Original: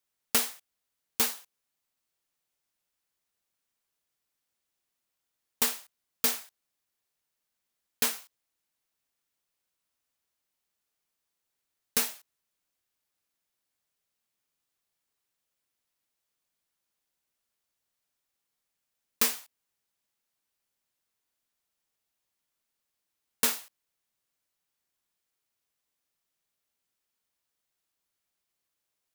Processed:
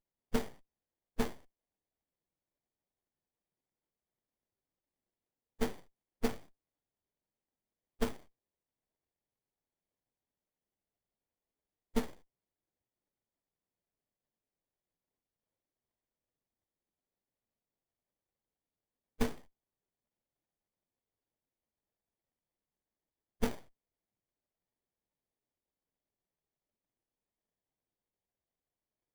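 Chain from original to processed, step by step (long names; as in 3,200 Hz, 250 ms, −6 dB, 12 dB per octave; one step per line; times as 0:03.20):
spectral peaks only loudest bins 32
windowed peak hold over 33 samples
level +5.5 dB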